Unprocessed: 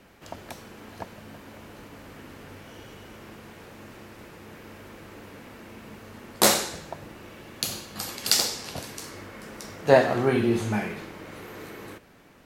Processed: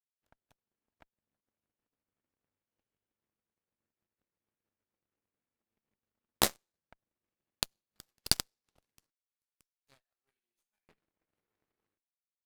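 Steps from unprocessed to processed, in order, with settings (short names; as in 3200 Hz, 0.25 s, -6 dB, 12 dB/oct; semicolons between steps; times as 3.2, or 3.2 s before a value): expander -44 dBFS; 9.1–10.89 differentiator; transient shaper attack +8 dB, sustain -9 dB; tremolo saw up 6.4 Hz, depth 40%; added harmonics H 2 -7 dB, 7 -17 dB, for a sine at 2.5 dBFS; gain -9 dB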